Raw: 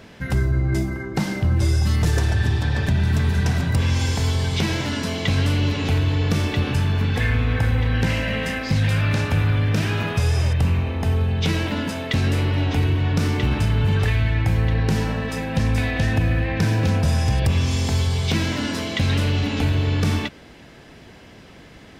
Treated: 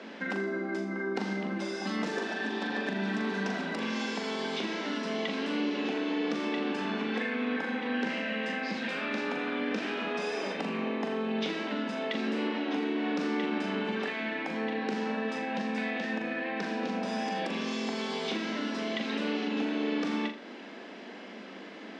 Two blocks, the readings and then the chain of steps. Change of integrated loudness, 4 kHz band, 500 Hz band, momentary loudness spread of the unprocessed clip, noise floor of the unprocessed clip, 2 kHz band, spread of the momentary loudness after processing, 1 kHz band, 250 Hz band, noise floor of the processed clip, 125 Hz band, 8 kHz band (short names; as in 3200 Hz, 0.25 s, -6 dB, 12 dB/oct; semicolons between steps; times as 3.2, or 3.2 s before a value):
-11.0 dB, -8.5 dB, -4.0 dB, 4 LU, -45 dBFS, -6.0 dB, 3 LU, -4.5 dB, -5.5 dB, -45 dBFS, -28.5 dB, -15.5 dB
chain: steep high-pass 200 Hz 72 dB/oct; compressor, threshold -32 dBFS, peak gain reduction 11.5 dB; air absorption 140 m; flutter echo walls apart 7 m, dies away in 0.37 s; gain +1.5 dB